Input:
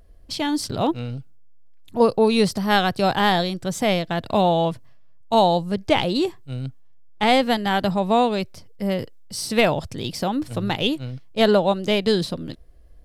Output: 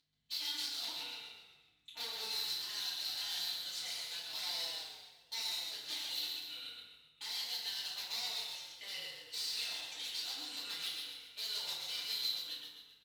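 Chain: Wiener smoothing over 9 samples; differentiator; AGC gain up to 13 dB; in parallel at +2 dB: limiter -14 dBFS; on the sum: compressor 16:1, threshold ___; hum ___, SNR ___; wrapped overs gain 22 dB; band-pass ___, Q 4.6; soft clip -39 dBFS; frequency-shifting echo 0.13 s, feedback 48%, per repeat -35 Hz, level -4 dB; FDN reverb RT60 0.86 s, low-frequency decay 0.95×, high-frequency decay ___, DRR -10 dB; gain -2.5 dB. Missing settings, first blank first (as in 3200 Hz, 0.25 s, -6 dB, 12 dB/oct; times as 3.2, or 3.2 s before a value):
-26 dBFS, 50 Hz, 15 dB, 4100 Hz, 0.6×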